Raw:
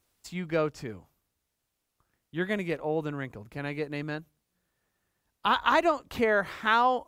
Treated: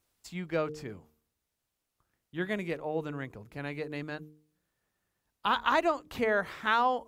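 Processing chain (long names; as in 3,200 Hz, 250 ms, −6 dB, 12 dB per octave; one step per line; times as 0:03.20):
hum removal 76.18 Hz, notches 6
level −3 dB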